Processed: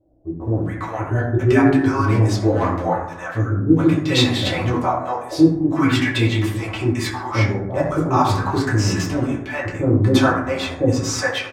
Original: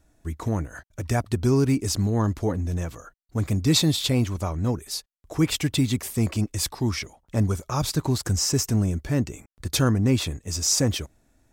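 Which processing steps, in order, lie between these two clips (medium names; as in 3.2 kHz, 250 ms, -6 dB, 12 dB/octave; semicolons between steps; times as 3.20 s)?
tone controls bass -15 dB, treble -14 dB; 1.70–2.36 s: hard clipper -24.5 dBFS, distortion -23 dB; bands offset in time lows, highs 410 ms, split 560 Hz; reverberation RT60 0.85 s, pre-delay 4 ms, DRR -6 dB; sweeping bell 0.38 Hz 590–3300 Hz +7 dB; trim +4 dB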